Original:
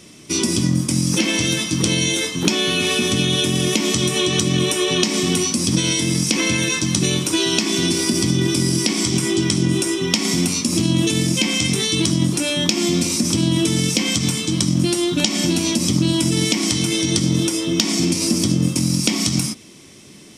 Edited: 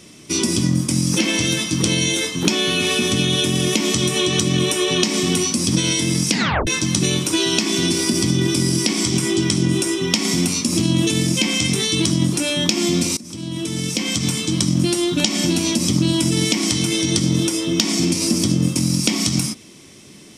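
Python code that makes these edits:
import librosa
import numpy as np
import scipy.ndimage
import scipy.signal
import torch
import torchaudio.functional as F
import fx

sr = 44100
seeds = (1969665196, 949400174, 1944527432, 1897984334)

y = fx.edit(x, sr, fx.tape_stop(start_s=6.31, length_s=0.36),
    fx.fade_in_from(start_s=13.17, length_s=1.22, floor_db=-21.5), tone=tone)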